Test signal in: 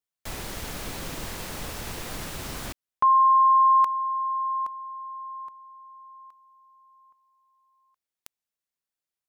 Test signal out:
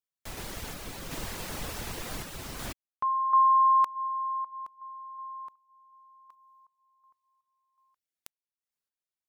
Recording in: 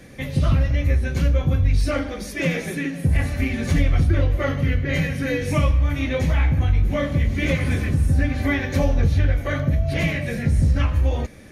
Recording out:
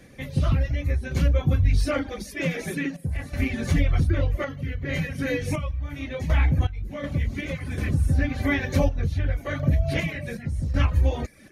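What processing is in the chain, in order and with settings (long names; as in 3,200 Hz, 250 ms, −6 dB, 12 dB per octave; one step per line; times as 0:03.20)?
sample-and-hold tremolo 2.7 Hz, depth 70%
reverb reduction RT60 0.53 s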